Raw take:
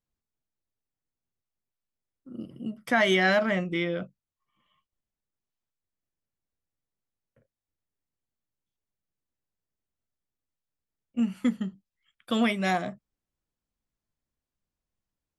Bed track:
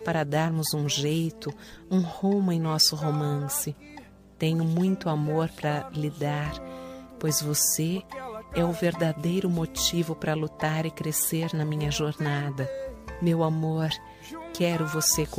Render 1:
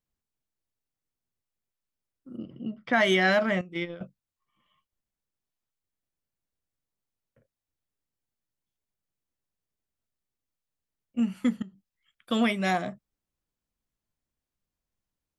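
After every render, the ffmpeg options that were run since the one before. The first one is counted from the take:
ffmpeg -i in.wav -filter_complex "[0:a]asplit=3[link_01][link_02][link_03];[link_01]afade=type=out:start_time=2.36:duration=0.02[link_04];[link_02]lowpass=frequency=4000:width=0.5412,lowpass=frequency=4000:width=1.3066,afade=type=in:start_time=2.36:duration=0.02,afade=type=out:start_time=2.92:duration=0.02[link_05];[link_03]afade=type=in:start_time=2.92:duration=0.02[link_06];[link_04][link_05][link_06]amix=inputs=3:normalize=0,asettb=1/sr,asplit=3[link_07][link_08][link_09];[link_07]atrim=end=3.614[link_10];[link_08]atrim=start=3.61:end=4.01,asetpts=PTS-STARTPTS,afade=type=in:duration=0.004:curve=qsin,afade=type=out:start_time=0.396:duration=0.004:curve=qsin,agate=range=-13dB:threshold=-28dB:ratio=16:release=100:detection=peak[link_11];[link_09]atrim=start=4.006[link_12];[link_10][link_11]acrossfade=duration=0.004:curve1=hsin:curve2=qsin[link_13];[link_13][link_12]acrossfade=duration=0.004:curve1=qsin:curve2=hsin,asettb=1/sr,asplit=3[link_14][link_15][link_16];[link_14]atrim=end=11.624[link_17];[link_15]atrim=start=11.62:end=12.31,asetpts=PTS-STARTPTS,afade=type=in:duration=0.004:curve=qsin,afade=type=out:start_time=0.686:duration=0.004:curve=qsin,acompressor=threshold=-50dB:ratio=2.5:attack=3.2:release=140:knee=1:detection=peak[link_18];[link_16]atrim=start=12.306[link_19];[link_17][link_18]acrossfade=duration=0.004:curve1=hsin:curve2=qsin[link_20];[link_20][link_19]acrossfade=duration=0.004:curve1=qsin:curve2=hsin" out.wav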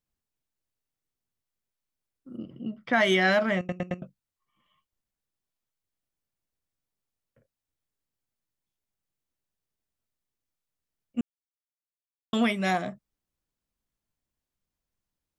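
ffmpeg -i in.wav -filter_complex "[0:a]asplit=7[link_01][link_02][link_03][link_04][link_05][link_06][link_07];[link_01]atrim=end=3.692[link_08];[link_02]atrim=start=3.578:end=3.692[link_09];[link_03]atrim=start=3.578:end=3.692[link_10];[link_04]atrim=start=3.578:end=3.692[link_11];[link_05]atrim=start=4.018:end=11.21,asetpts=PTS-STARTPTS,afade=type=out:start_time=7.188:duration=0.004:curve=hsin[link_12];[link_06]atrim=start=11.21:end=12.33,asetpts=PTS-STARTPTS,volume=0[link_13];[link_07]atrim=start=12.33,asetpts=PTS-STARTPTS,afade=type=in:duration=0.004:curve=hsin[link_14];[link_08][link_09]acrossfade=duration=0.004:curve1=hsin:curve2=hsin[link_15];[link_15][link_10]acrossfade=duration=0.004:curve1=hsin:curve2=hsin[link_16];[link_16][link_11]acrossfade=duration=0.004:curve1=hsin:curve2=hsin[link_17];[link_12][link_13][link_14]concat=n=3:v=0:a=1[link_18];[link_17][link_18]acrossfade=duration=0.004:curve1=hsin:curve2=hsin" out.wav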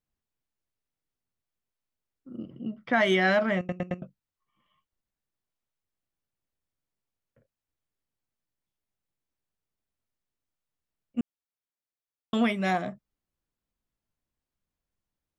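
ffmpeg -i in.wav -af "highshelf=frequency=3800:gain=-7" out.wav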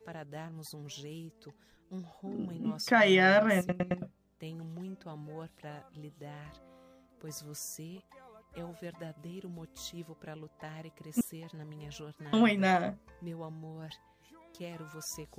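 ffmpeg -i in.wav -i bed.wav -filter_complex "[1:a]volume=-18.5dB[link_01];[0:a][link_01]amix=inputs=2:normalize=0" out.wav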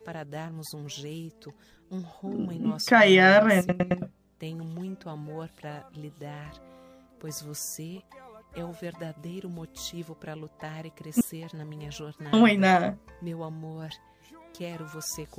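ffmpeg -i in.wav -af "volume=6.5dB" out.wav

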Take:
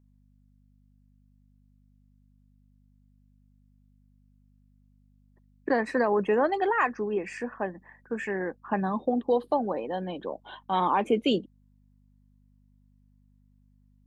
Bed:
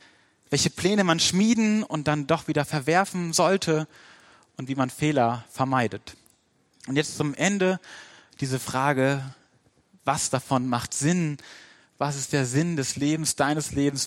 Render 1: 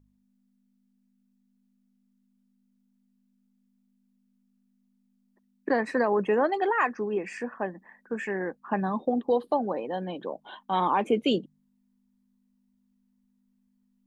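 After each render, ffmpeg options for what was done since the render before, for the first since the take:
ffmpeg -i in.wav -af "bandreject=frequency=50:width_type=h:width=4,bandreject=frequency=100:width_type=h:width=4,bandreject=frequency=150:width_type=h:width=4" out.wav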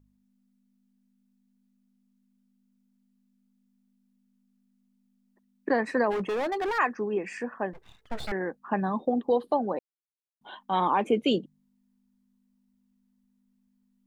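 ffmpeg -i in.wav -filter_complex "[0:a]asplit=3[link_01][link_02][link_03];[link_01]afade=type=out:start_time=6.1:duration=0.02[link_04];[link_02]asoftclip=type=hard:threshold=-26.5dB,afade=type=in:start_time=6.1:duration=0.02,afade=type=out:start_time=6.77:duration=0.02[link_05];[link_03]afade=type=in:start_time=6.77:duration=0.02[link_06];[link_04][link_05][link_06]amix=inputs=3:normalize=0,asettb=1/sr,asplit=3[link_07][link_08][link_09];[link_07]atrim=end=7.734[link_10];[link_08]atrim=start=7.73:end=8.32,asetpts=PTS-STARTPTS,afade=type=in:duration=0.004:curve=qsin,afade=type=out:start_time=0.586:duration=0.004:curve=qsin,aeval=exprs='abs(val(0))':channel_layout=same[link_11];[link_09]atrim=start=8.316[link_12];[link_10][link_11]acrossfade=duration=0.004:curve1=hsin:curve2=qsin[link_13];[link_13][link_12]acrossfade=duration=0.004:curve1=qsin:curve2=hsin,asplit=3[link_14][link_15][link_16];[link_14]atrim=end=9.79,asetpts=PTS-STARTPTS,afade=type=out:start_time=9.786:duration=0.004:curve=hsin[link_17];[link_15]atrim=start=9.79:end=10.41,asetpts=PTS-STARTPTS,volume=0[link_18];[link_16]atrim=start=10.41,asetpts=PTS-STARTPTS,afade=type=in:duration=0.004:curve=hsin[link_19];[link_17][link_18][link_19]concat=n=3:v=0:a=1" out.wav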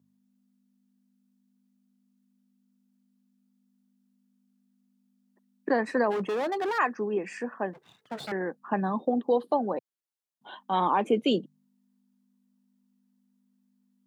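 ffmpeg -i in.wav -af "highpass=frequency=130:width=0.5412,highpass=frequency=130:width=1.3066,equalizer=frequency=2200:width_type=o:width=0.5:gain=-3" out.wav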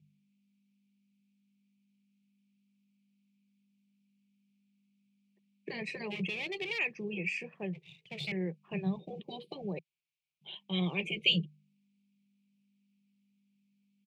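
ffmpeg -i in.wav -af "afftfilt=real='re*lt(hypot(re,im),0.355)':imag='im*lt(hypot(re,im),0.355)':win_size=1024:overlap=0.75,firequalizer=gain_entry='entry(110,0);entry(160,13);entry(250,-20);entry(360,-4);entry(810,-17);entry(1500,-27);entry(2300,13);entry(3600,2);entry(6400,-5);entry(12000,-12)':delay=0.05:min_phase=1" out.wav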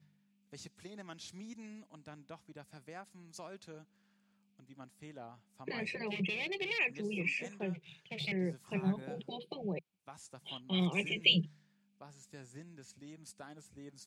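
ffmpeg -i in.wav -i bed.wav -filter_complex "[1:a]volume=-28dB[link_01];[0:a][link_01]amix=inputs=2:normalize=0" out.wav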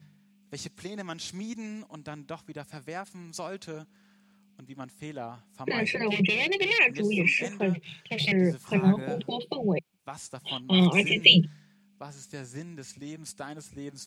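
ffmpeg -i in.wav -af "volume=11.5dB,alimiter=limit=-2dB:level=0:latency=1" out.wav

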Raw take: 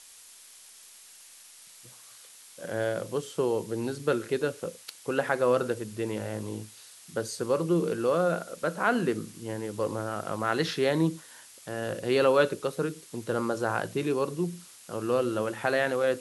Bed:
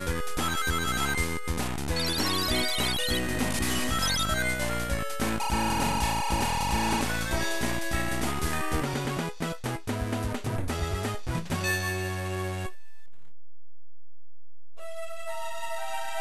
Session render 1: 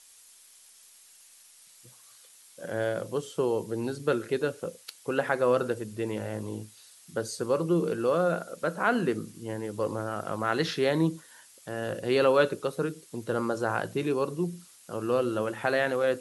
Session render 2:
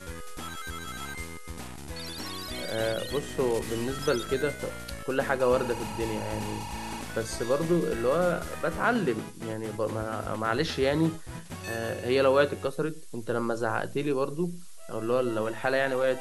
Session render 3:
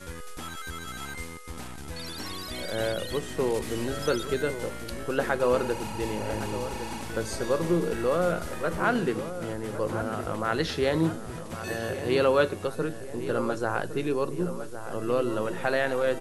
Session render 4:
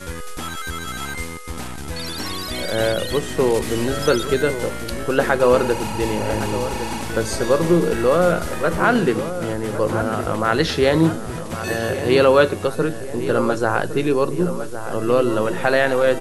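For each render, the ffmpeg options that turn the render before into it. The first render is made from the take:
ffmpeg -i in.wav -af "afftdn=noise_reduction=6:noise_floor=-52" out.wav
ffmpeg -i in.wav -i bed.wav -filter_complex "[1:a]volume=-10dB[link_01];[0:a][link_01]amix=inputs=2:normalize=0" out.wav
ffmpeg -i in.wav -filter_complex "[0:a]asplit=2[link_01][link_02];[link_02]adelay=1110,lowpass=frequency=2200:poles=1,volume=-11dB,asplit=2[link_03][link_04];[link_04]adelay=1110,lowpass=frequency=2200:poles=1,volume=0.55,asplit=2[link_05][link_06];[link_06]adelay=1110,lowpass=frequency=2200:poles=1,volume=0.55,asplit=2[link_07][link_08];[link_08]adelay=1110,lowpass=frequency=2200:poles=1,volume=0.55,asplit=2[link_09][link_10];[link_10]adelay=1110,lowpass=frequency=2200:poles=1,volume=0.55,asplit=2[link_11][link_12];[link_12]adelay=1110,lowpass=frequency=2200:poles=1,volume=0.55[link_13];[link_01][link_03][link_05][link_07][link_09][link_11][link_13]amix=inputs=7:normalize=0" out.wav
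ffmpeg -i in.wav -af "volume=9dB,alimiter=limit=-3dB:level=0:latency=1" out.wav

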